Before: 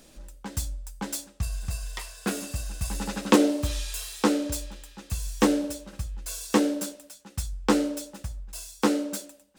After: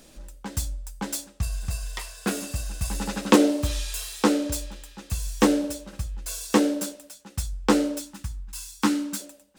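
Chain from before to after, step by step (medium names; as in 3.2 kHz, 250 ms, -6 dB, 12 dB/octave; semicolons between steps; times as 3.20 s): 8.00–9.20 s: high-order bell 530 Hz -13.5 dB 1.1 oct; trim +2 dB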